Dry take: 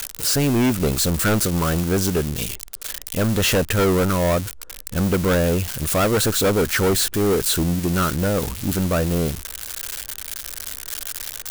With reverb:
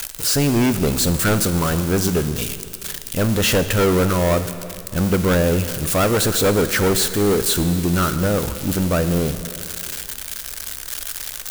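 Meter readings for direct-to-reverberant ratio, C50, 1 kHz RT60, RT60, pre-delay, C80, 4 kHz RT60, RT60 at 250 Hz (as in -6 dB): 10.0 dB, 11.0 dB, 2.5 s, 2.5 s, 4 ms, 12.0 dB, 2.3 s, 2.6 s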